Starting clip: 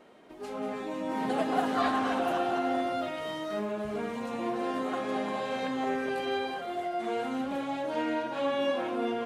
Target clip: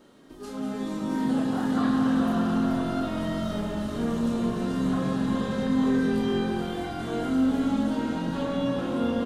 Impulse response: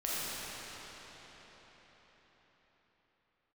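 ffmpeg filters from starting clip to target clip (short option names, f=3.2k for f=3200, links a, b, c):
-filter_complex "[0:a]flanger=delay=3.5:depth=1.2:regen=76:speed=0.56:shape=sinusoidal,acrossover=split=2900[a][b];[b]acompressor=threshold=-55dB:ratio=4:attack=1:release=60[c];[a][c]amix=inputs=2:normalize=0,equalizer=f=2.3k:t=o:w=0.76:g=-12,asplit=2[d][e];[e]alimiter=level_in=5dB:limit=-24dB:level=0:latency=1:release=236,volume=-5dB,volume=2.5dB[f];[d][f]amix=inputs=2:normalize=0,equalizer=f=690:t=o:w=1.5:g=-12.5,asplit=2[g][h];[h]adelay=30,volume=-5.5dB[i];[g][i]amix=inputs=2:normalize=0,asplit=8[j][k][l][m][n][o][p][q];[k]adelay=429,afreqshift=-45,volume=-6.5dB[r];[l]adelay=858,afreqshift=-90,volume=-11.9dB[s];[m]adelay=1287,afreqshift=-135,volume=-17.2dB[t];[n]adelay=1716,afreqshift=-180,volume=-22.6dB[u];[o]adelay=2145,afreqshift=-225,volume=-27.9dB[v];[p]adelay=2574,afreqshift=-270,volume=-33.3dB[w];[q]adelay=3003,afreqshift=-315,volume=-38.6dB[x];[j][r][s][t][u][v][w][x]amix=inputs=8:normalize=0,asplit=2[y][z];[1:a]atrim=start_sample=2205,lowshelf=f=150:g=10.5[aa];[z][aa]afir=irnorm=-1:irlink=0,volume=-12.5dB[ab];[y][ab]amix=inputs=2:normalize=0,volume=2.5dB"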